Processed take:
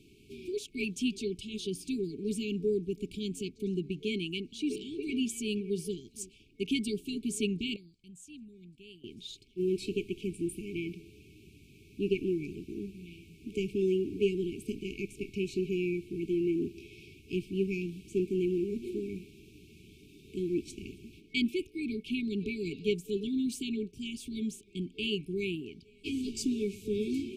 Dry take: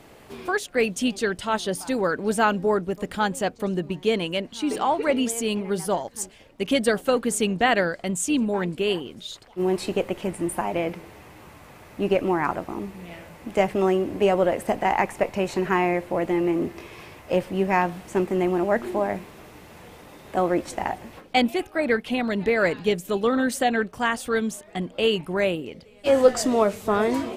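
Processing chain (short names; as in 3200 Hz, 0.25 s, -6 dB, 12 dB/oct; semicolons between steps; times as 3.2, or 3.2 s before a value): high shelf 8100 Hz -8.5 dB; FFT band-reject 440–2200 Hz; 7.76–9.04 passive tone stack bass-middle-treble 6-0-2; gain -6.5 dB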